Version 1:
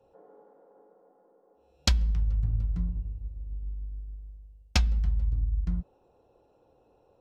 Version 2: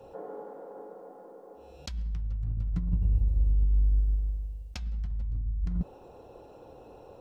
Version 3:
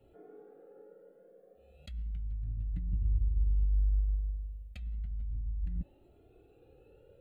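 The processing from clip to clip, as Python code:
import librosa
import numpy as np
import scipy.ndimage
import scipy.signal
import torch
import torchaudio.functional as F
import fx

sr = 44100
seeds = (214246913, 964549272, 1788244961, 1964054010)

y1 = fx.over_compress(x, sr, threshold_db=-35.0, ratio=-1.0)
y1 = y1 * librosa.db_to_amplitude(7.5)
y2 = fx.fixed_phaser(y1, sr, hz=2400.0, stages=4)
y2 = fx.comb_cascade(y2, sr, direction='rising', hz=0.33)
y2 = y2 * librosa.db_to_amplitude(-3.5)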